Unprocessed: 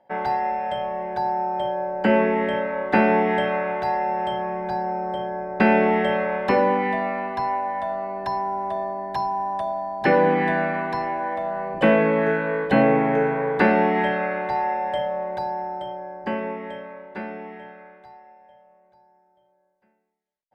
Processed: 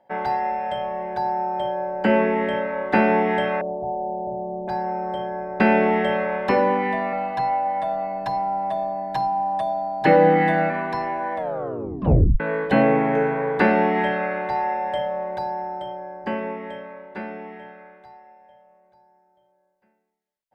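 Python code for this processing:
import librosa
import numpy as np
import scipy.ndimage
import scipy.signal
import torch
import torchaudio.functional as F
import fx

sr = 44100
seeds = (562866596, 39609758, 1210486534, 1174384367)

y = fx.ellip_lowpass(x, sr, hz=730.0, order=4, stop_db=70, at=(3.61, 4.68))
y = fx.comb(y, sr, ms=6.5, depth=0.8, at=(7.12, 10.7))
y = fx.edit(y, sr, fx.tape_stop(start_s=11.36, length_s=1.04), tone=tone)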